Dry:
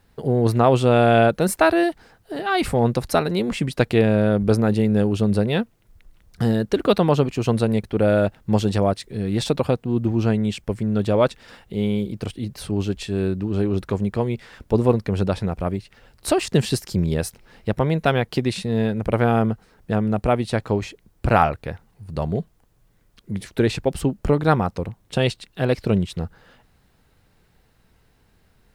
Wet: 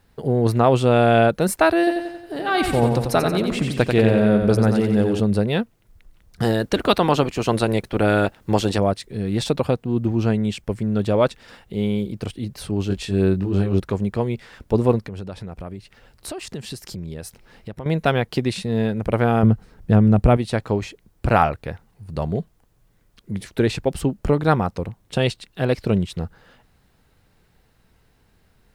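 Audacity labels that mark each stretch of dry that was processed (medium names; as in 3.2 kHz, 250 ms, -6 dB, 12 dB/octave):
1.780000	5.200000	feedback delay 90 ms, feedback 52%, level -5.5 dB
6.420000	8.770000	spectral peaks clipped ceiling under each frame's peak by 12 dB
12.880000	13.800000	doubling 21 ms -2.5 dB
14.990000	17.860000	compression 3:1, threshold -32 dBFS
19.430000	20.370000	bass shelf 240 Hz +11.5 dB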